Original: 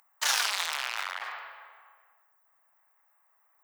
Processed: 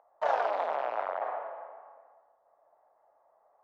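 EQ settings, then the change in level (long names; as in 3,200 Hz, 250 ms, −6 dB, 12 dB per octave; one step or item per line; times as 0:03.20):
low-pass with resonance 630 Hz, resonance Q 3.4
low-shelf EQ 320 Hz +7 dB
+7.0 dB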